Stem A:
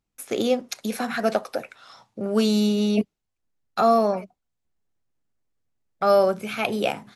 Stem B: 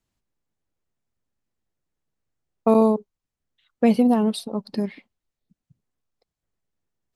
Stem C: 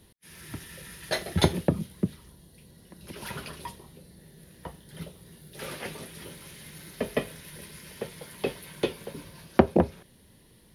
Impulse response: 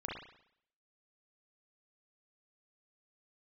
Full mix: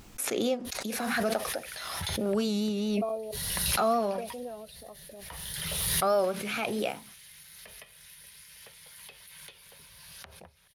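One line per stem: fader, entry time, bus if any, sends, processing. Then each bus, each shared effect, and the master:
-8.0 dB, 0.00 s, no send, vibrato 4.6 Hz 52 cents
-7.0 dB, 0.35 s, no send, talking filter a-e 3.3 Hz
+0.5 dB, 0.65 s, no send, amplifier tone stack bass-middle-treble 10-0-10; compression 12:1, threshold -48 dBFS, peak gain reduction 23 dB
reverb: none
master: bass shelf 130 Hz -3.5 dB; swell ahead of each attack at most 24 dB/s

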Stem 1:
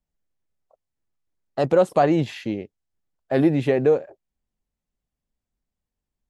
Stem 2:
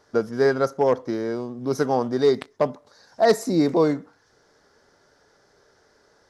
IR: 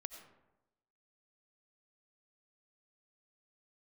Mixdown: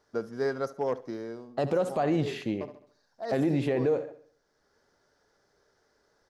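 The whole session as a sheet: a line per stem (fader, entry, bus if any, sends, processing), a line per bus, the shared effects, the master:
-4.0 dB, 0.00 s, no send, echo send -16 dB, none
-10.0 dB, 0.00 s, no send, echo send -19.5 dB, auto duck -9 dB, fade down 0.35 s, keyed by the first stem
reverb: none
echo: feedback delay 70 ms, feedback 43%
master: peak limiter -18 dBFS, peak gain reduction 8 dB

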